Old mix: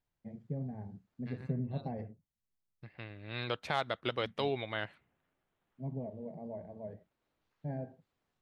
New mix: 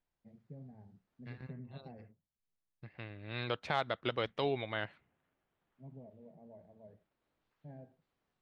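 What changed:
first voice −12.0 dB
master: add high-frequency loss of the air 67 metres

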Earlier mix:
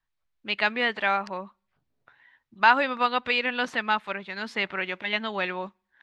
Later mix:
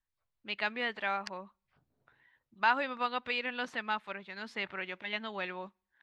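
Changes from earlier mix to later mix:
first voice −9.0 dB
second voice +3.5 dB

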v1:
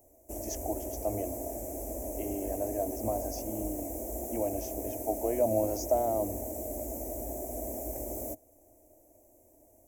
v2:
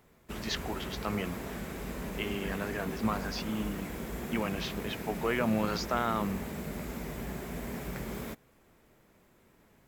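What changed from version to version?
master: remove drawn EQ curve 110 Hz 0 dB, 160 Hz −28 dB, 300 Hz +7 dB, 430 Hz −4 dB, 640 Hz +12 dB, 1,300 Hz −28 dB, 2,300 Hz −17 dB, 4,000 Hz −29 dB, 6,000 Hz +5 dB, 10,000 Hz +10 dB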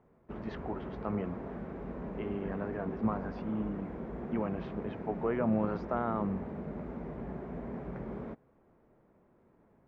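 background: add low-shelf EQ 86 Hz −7 dB
master: add low-pass filter 1,000 Hz 12 dB per octave

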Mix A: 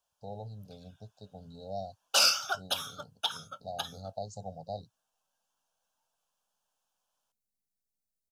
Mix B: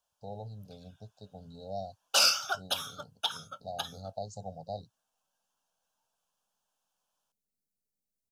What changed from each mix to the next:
second voice: send +6.0 dB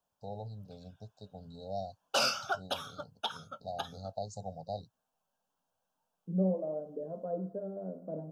second voice: entry −2.50 s
background: add spectral tilt −3.5 dB per octave

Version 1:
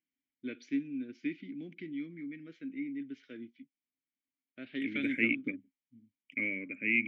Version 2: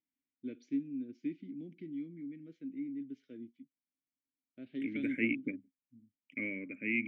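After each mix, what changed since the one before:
first voice: add parametric band 1,500 Hz −11.5 dB 2.2 octaves
master: add parametric band 4,000 Hz −7 dB 2.9 octaves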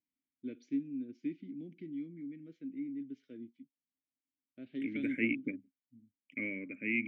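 nothing changed

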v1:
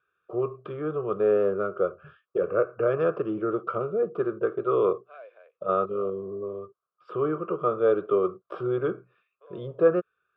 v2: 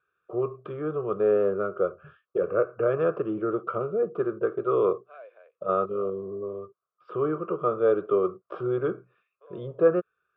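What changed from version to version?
master: add low-pass filter 3,100 Hz 6 dB per octave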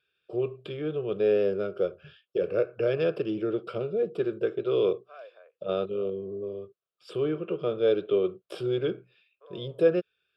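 first voice: remove low-pass with resonance 1,200 Hz, resonance Q 5.9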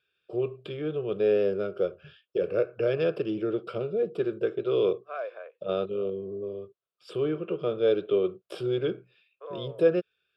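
second voice +11.5 dB

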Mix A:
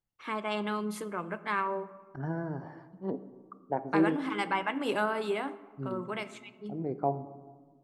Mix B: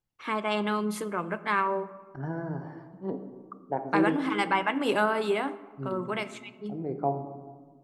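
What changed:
first voice +4.5 dB
second voice: send +6.0 dB

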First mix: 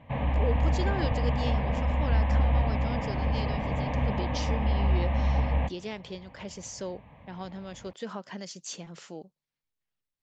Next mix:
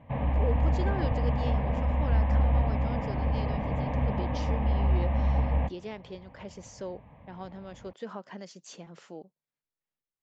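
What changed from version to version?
speech: add low-shelf EQ 130 Hz −11 dB
master: add high-shelf EQ 2,400 Hz −11 dB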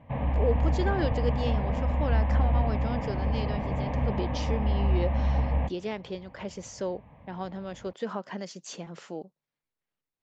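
speech +6.0 dB

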